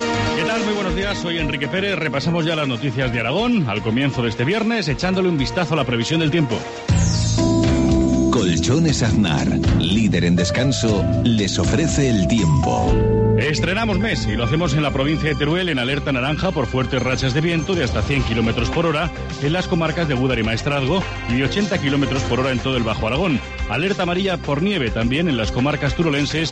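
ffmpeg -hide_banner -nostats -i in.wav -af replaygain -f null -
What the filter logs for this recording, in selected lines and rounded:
track_gain = +1.6 dB
track_peak = 0.390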